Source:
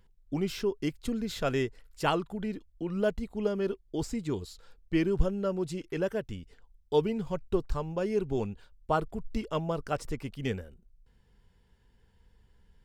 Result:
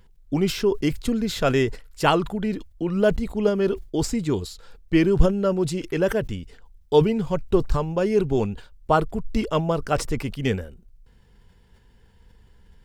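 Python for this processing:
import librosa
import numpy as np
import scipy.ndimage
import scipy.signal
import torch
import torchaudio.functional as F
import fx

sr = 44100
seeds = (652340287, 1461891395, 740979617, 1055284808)

y = fx.sustainer(x, sr, db_per_s=140.0)
y = y * librosa.db_to_amplitude(8.5)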